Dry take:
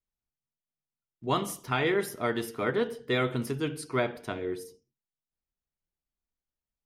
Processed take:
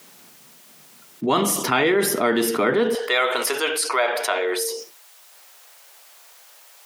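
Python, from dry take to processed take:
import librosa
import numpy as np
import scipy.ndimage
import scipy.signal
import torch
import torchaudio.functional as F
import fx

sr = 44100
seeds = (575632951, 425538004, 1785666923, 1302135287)

y = fx.highpass(x, sr, hz=fx.steps((0.0, 180.0), (2.95, 560.0)), slope=24)
y = fx.env_flatten(y, sr, amount_pct=70)
y = y * 10.0 ** (6.5 / 20.0)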